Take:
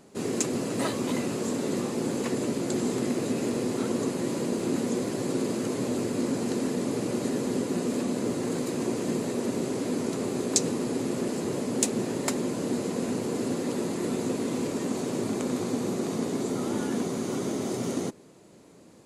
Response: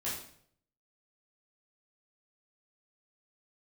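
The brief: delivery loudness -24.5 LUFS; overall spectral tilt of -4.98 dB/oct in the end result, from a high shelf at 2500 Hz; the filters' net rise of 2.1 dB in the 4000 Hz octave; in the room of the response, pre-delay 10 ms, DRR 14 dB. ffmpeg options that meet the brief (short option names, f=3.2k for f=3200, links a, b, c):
-filter_complex "[0:a]highshelf=f=2.5k:g=-5,equalizer=f=4k:t=o:g=7,asplit=2[a][b];[1:a]atrim=start_sample=2205,adelay=10[c];[b][c]afir=irnorm=-1:irlink=0,volume=-17.5dB[d];[a][d]amix=inputs=2:normalize=0,volume=5dB"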